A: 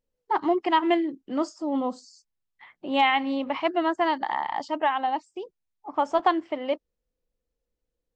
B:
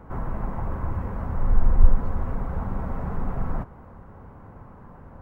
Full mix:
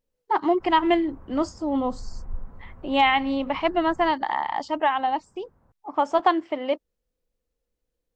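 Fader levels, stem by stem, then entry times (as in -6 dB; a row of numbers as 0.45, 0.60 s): +2.0, -18.0 dB; 0.00, 0.50 s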